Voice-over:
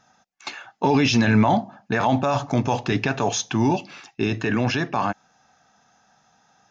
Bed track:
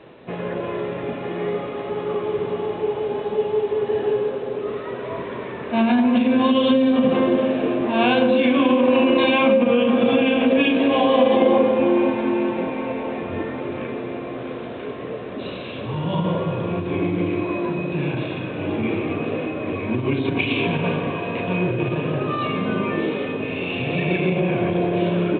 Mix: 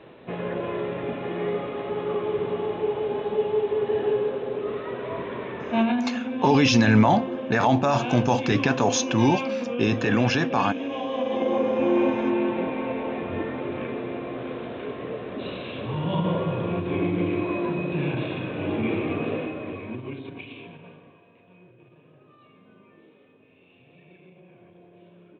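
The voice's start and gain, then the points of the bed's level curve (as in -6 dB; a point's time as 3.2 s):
5.60 s, 0.0 dB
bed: 5.8 s -2.5 dB
6.16 s -12.5 dB
11.1 s -12.5 dB
12 s -2.5 dB
19.31 s -2.5 dB
21.37 s -31.5 dB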